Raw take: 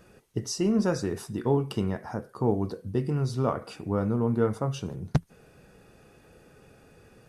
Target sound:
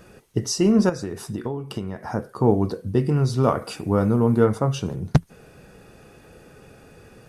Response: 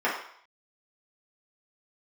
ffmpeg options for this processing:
-filter_complex "[0:a]asettb=1/sr,asplit=3[a][b][c];[a]atrim=end=0.894[d];[b]atrim=start=0.89:end=2.03,asetpts=PTS-STARTPTS,afade=t=in:d=0.004:c=qsin,afade=t=out:st=1.136:d=0.004:c=qsin,acompressor=threshold=-32dB:ratio=16[e];[c]atrim=start=2.026[f];[d][e]acrossfade=d=0.004:c1=hsin:c2=qsin[g];[g][f]acrossfade=d=0.004:c1=qsin:c2=hsin,asettb=1/sr,asplit=3[h][i][j];[h]atrim=end=3.434[k];[i]atrim=start=3.43:end=4.45,asetpts=PTS-STARTPTS,afade=t=in:d=0.004:c=qsin,afade=t=out:st=1.016:d=0.004:c=qsin,highshelf=f=6k:g=8[l];[j]atrim=start=4.446[m];[k][l]acrossfade=d=0.004:c1=hsin:c2=qsin[n];[n][m]acrossfade=d=0.004:c1=qsin:c2=hsin,volume=7dB"

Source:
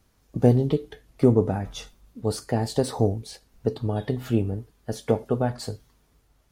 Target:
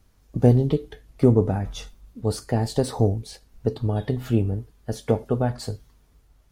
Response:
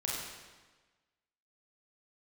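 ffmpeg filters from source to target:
-af "lowshelf=f=82:g=9.5"

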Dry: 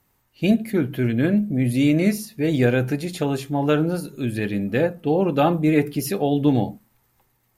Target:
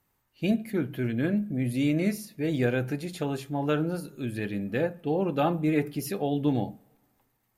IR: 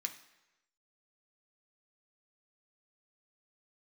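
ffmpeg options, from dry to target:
-filter_complex "[0:a]asplit=2[a][b];[1:a]atrim=start_sample=2205,asetrate=29988,aresample=44100,lowpass=3.1k[c];[b][c]afir=irnorm=-1:irlink=0,volume=-16.5dB[d];[a][d]amix=inputs=2:normalize=0,volume=-7.5dB"

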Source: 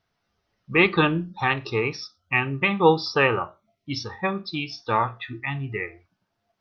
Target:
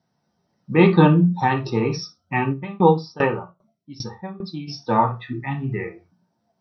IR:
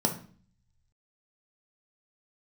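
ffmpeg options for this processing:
-filter_complex "[1:a]atrim=start_sample=2205,afade=t=out:st=0.13:d=0.01,atrim=end_sample=6174[a];[0:a][a]afir=irnorm=-1:irlink=0,asplit=3[b][c][d];[b]afade=t=out:st=2.52:d=0.02[e];[c]aeval=exprs='val(0)*pow(10,-20*if(lt(mod(2.5*n/s,1),2*abs(2.5)/1000),1-mod(2.5*n/s,1)/(2*abs(2.5)/1000),(mod(2.5*n/s,1)-2*abs(2.5)/1000)/(1-2*abs(2.5)/1000))/20)':c=same,afade=t=in:st=2.52:d=0.02,afade=t=out:st=4.67:d=0.02[f];[d]afade=t=in:st=4.67:d=0.02[g];[e][f][g]amix=inputs=3:normalize=0,volume=-8dB"

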